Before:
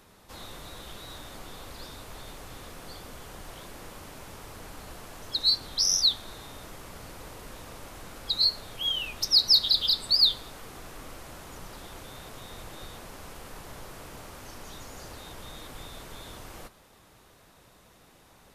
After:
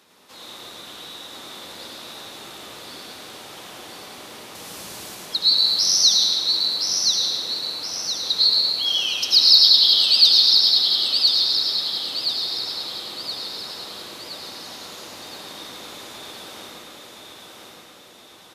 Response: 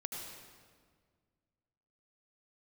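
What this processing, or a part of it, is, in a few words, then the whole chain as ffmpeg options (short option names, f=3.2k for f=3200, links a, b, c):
PA in a hall: -filter_complex "[0:a]asettb=1/sr,asplit=3[a][b][c];[a]atrim=end=4.554[d];[b]atrim=start=4.55:end=5.15,asetpts=PTS-STARTPTS,afade=t=in:d=0.004:c=qsin,afade=t=out:st=0.596:d=0.004:c=qsin,bass=f=250:g=8,treble=f=4k:g=10[e];[c]atrim=start=5.146[f];[d][e]acrossfade=d=0.004:c1=hsin:c2=qsin[g];[g][f]acrossfade=d=0.004:c1=qsin:c2=hsin,highpass=200,equalizer=f=3.9k:t=o:w=1.6:g=7,aecho=1:1:108:0.562[h];[1:a]atrim=start_sample=2205[i];[h][i]afir=irnorm=-1:irlink=0,aecho=1:1:1021|2042|3063|4084|5105|6126:0.631|0.297|0.139|0.0655|0.0308|0.0145,volume=1.5dB"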